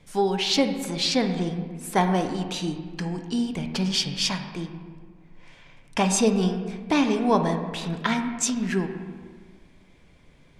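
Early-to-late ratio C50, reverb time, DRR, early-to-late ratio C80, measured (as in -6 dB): 7.5 dB, 1.7 s, 5.5 dB, 8.5 dB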